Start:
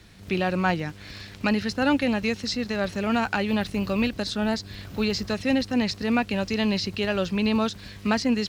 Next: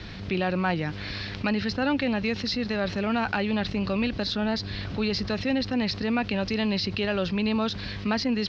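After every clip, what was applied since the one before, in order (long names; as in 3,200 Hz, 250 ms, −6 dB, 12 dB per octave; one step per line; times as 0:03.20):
Butterworth low-pass 5,200 Hz 36 dB per octave
envelope flattener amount 50%
level −4 dB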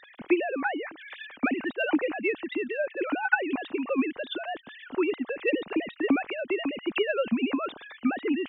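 three sine waves on the formant tracks
transient designer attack +8 dB, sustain +1 dB
level −5 dB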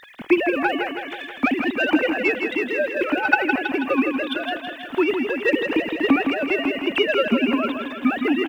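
spectral envelope flattened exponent 0.6
on a send: repeating echo 162 ms, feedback 57%, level −6.5 dB
on the sum: level +6 dB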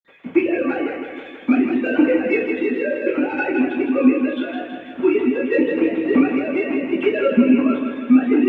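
convolution reverb RT60 0.45 s, pre-delay 46 ms
level −2 dB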